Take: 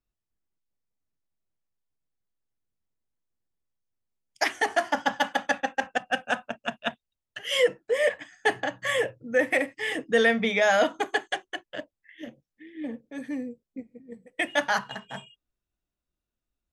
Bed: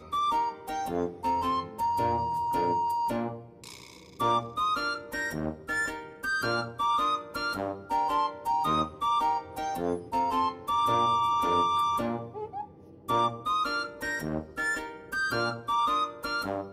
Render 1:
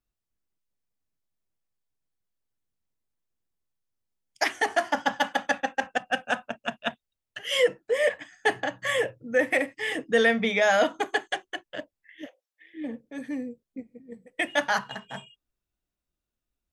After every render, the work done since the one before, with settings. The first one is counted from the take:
0:12.26–0:12.74: Butterworth high-pass 530 Hz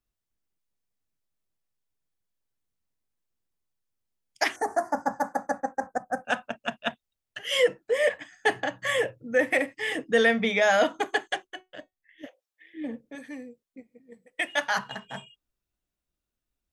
0:04.56–0:06.25: Butterworth band-reject 3,000 Hz, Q 0.52
0:11.47–0:12.24: tuned comb filter 370 Hz, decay 0.18 s
0:13.15–0:14.77: low-shelf EQ 430 Hz −11.5 dB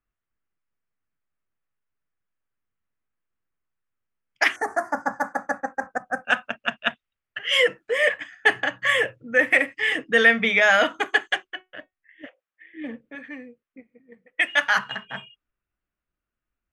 low-pass that shuts in the quiet parts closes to 1,800 Hz, open at −24 dBFS
flat-topped bell 1,900 Hz +8 dB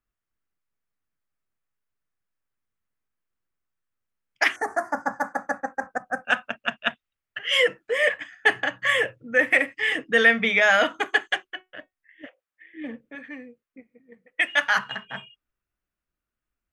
level −1 dB

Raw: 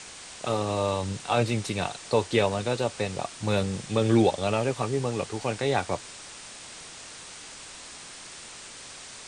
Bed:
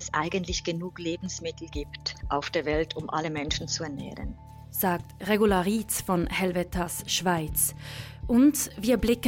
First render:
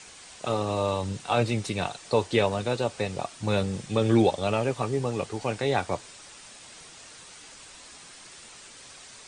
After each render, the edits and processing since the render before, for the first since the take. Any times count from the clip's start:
broadband denoise 6 dB, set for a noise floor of −44 dBFS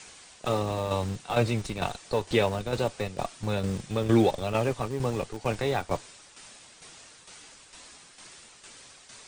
shaped tremolo saw down 2.2 Hz, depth 60%
in parallel at −8.5 dB: comparator with hysteresis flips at −31.5 dBFS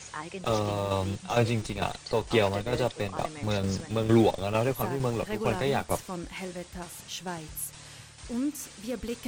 mix in bed −11 dB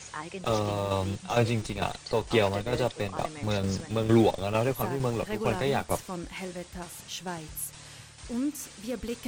no processing that can be heard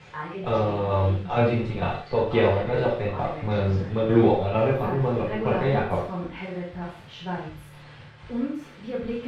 high-frequency loss of the air 400 metres
reverb whose tail is shaped and stops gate 180 ms falling, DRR −5 dB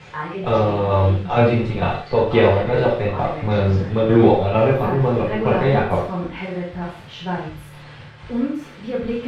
level +6 dB
brickwall limiter −2 dBFS, peak gain reduction 3 dB

